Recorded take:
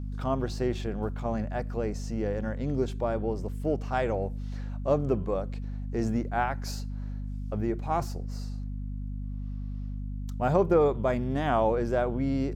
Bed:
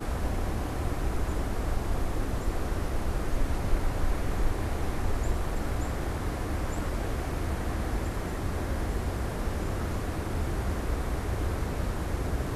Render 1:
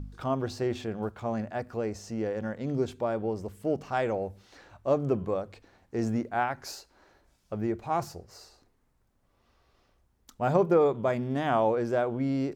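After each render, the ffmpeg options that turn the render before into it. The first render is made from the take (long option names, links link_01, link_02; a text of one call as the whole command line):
ffmpeg -i in.wav -af "bandreject=frequency=50:width_type=h:width=4,bandreject=frequency=100:width_type=h:width=4,bandreject=frequency=150:width_type=h:width=4,bandreject=frequency=200:width_type=h:width=4,bandreject=frequency=250:width_type=h:width=4" out.wav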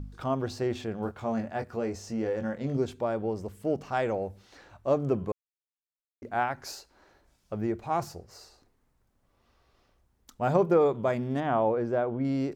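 ffmpeg -i in.wav -filter_complex "[0:a]asettb=1/sr,asplit=3[link_01][link_02][link_03];[link_01]atrim=end=1.034[link_04];[link_02]atrim=start=1.03:end=2.77,asetpts=PTS-STARTPTS,afade=type=in:duration=0.004:curve=qsin,afade=type=out:start_time=1.736:duration=0.004:curve=qsin,asplit=2[link_05][link_06];[link_06]adelay=22,volume=-6.5dB[link_07];[link_05][link_07]amix=inputs=2:normalize=0,atrim=end_sample=76734[link_08];[link_03]atrim=start=2.766[link_09];[link_04][link_08]acrossfade=duration=0.004:curve1=hsin:curve2=qsin[link_10];[link_10][link_09]acrossfade=duration=0.004:curve1=qsin:curve2=hsin,asettb=1/sr,asplit=3[link_11][link_12][link_13];[link_11]atrim=end=11.404[link_14];[link_12]atrim=start=11.4:end=12.25,asetpts=PTS-STARTPTS,afade=type=in:duration=0.004:curve=qsin,afade=type=out:start_time=0.846:duration=0.004:curve=qsin,lowpass=frequency=1600:poles=1[link_15];[link_13]atrim=start=12.246[link_16];[link_14][link_15]acrossfade=duration=0.004:curve1=hsin:curve2=qsin[link_17];[link_17][link_16]acrossfade=duration=0.004:curve1=qsin:curve2=hsin,asplit=3[link_18][link_19][link_20];[link_18]atrim=end=5.32,asetpts=PTS-STARTPTS,afade=type=out:start_time=5.316:duration=0.004:curve=hsin[link_21];[link_19]atrim=start=5.32:end=6.22,asetpts=PTS-STARTPTS,volume=0[link_22];[link_20]atrim=start=6.22,asetpts=PTS-STARTPTS,afade=type=in:duration=0.004:curve=hsin[link_23];[link_21][link_22][link_23]concat=n=3:v=0:a=1" out.wav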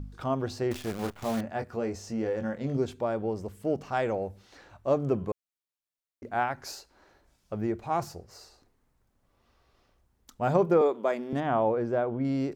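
ffmpeg -i in.wav -filter_complex "[0:a]asettb=1/sr,asplit=3[link_01][link_02][link_03];[link_01]atrim=end=0.714[link_04];[link_02]atrim=start=0.71:end=1.41,asetpts=PTS-STARTPTS,afade=type=in:duration=0.004:curve=qsin,afade=type=out:start_time=0.696:duration=0.004:curve=qsin,acrusher=bits=7:dc=4:mix=0:aa=0.000001[link_05];[link_03]atrim=start=1.406[link_06];[link_04][link_05]acrossfade=duration=0.004:curve1=hsin:curve2=qsin[link_07];[link_07][link_06]acrossfade=duration=0.004:curve1=qsin:curve2=hsin,asettb=1/sr,asplit=3[link_08][link_09][link_10];[link_08]atrim=end=10.814[link_11];[link_09]atrim=start=10.81:end=11.33,asetpts=PTS-STARTPTS,afade=type=in:duration=0.004:curve=qsin,afade=type=out:start_time=0.516:duration=0.004:curve=qsin,highpass=frequency=260:width=0.5412,highpass=frequency=260:width=1.3066[link_12];[link_10]atrim=start=11.326[link_13];[link_11][link_12]acrossfade=duration=0.004:curve1=hsin:curve2=qsin[link_14];[link_14][link_13]acrossfade=duration=0.004:curve1=qsin:curve2=hsin" out.wav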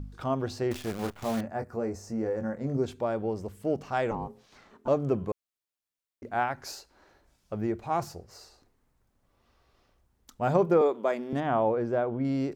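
ffmpeg -i in.wav -filter_complex "[0:a]asettb=1/sr,asplit=3[link_01][link_02][link_03];[link_01]atrim=end=1.474[link_04];[link_02]atrim=start=1.47:end=2.84,asetpts=PTS-STARTPTS,afade=type=in:duration=0.004:curve=qsin,afade=type=out:start_time=1.366:duration=0.004:curve=qsin,equalizer=frequency=3200:width=1.5:gain=-14.5[link_05];[link_03]atrim=start=2.836[link_06];[link_04][link_05]acrossfade=duration=0.004:curve1=hsin:curve2=qsin[link_07];[link_07][link_06]acrossfade=duration=0.004:curve1=qsin:curve2=hsin,asettb=1/sr,asplit=3[link_08][link_09][link_10];[link_08]atrim=end=4.114[link_11];[link_09]atrim=start=4.11:end=4.88,asetpts=PTS-STARTPTS,afade=type=in:duration=0.004:curve=qsin,afade=type=out:start_time=0.766:duration=0.004:curve=qsin,aeval=exprs='val(0)*sin(2*PI*320*n/s)':channel_layout=same[link_12];[link_10]atrim=start=4.876[link_13];[link_11][link_12]acrossfade=duration=0.004:curve1=hsin:curve2=qsin[link_14];[link_14][link_13]acrossfade=duration=0.004:curve1=qsin:curve2=hsin" out.wav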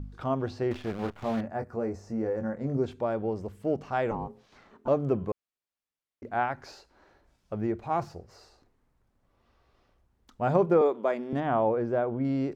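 ffmpeg -i in.wav -filter_complex "[0:a]aemphasis=mode=reproduction:type=cd,acrossover=split=4900[link_01][link_02];[link_02]acompressor=threshold=-60dB:ratio=4:attack=1:release=60[link_03];[link_01][link_03]amix=inputs=2:normalize=0" out.wav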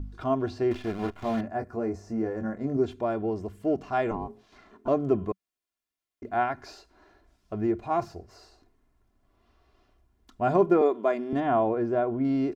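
ffmpeg -i in.wav -af "equalizer=frequency=190:width=3.9:gain=8.5,aecho=1:1:2.9:0.62" out.wav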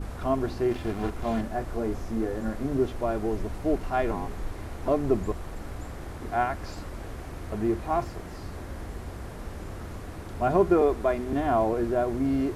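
ffmpeg -i in.wav -i bed.wav -filter_complex "[1:a]volume=-7dB[link_01];[0:a][link_01]amix=inputs=2:normalize=0" out.wav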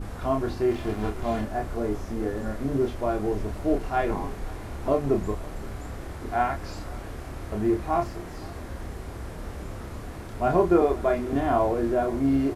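ffmpeg -i in.wav -filter_complex "[0:a]asplit=2[link_01][link_02];[link_02]adelay=29,volume=-4.5dB[link_03];[link_01][link_03]amix=inputs=2:normalize=0,aecho=1:1:519:0.075" out.wav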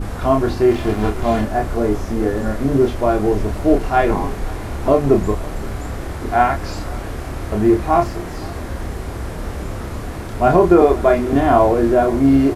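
ffmpeg -i in.wav -af "volume=10dB,alimiter=limit=-1dB:level=0:latency=1" out.wav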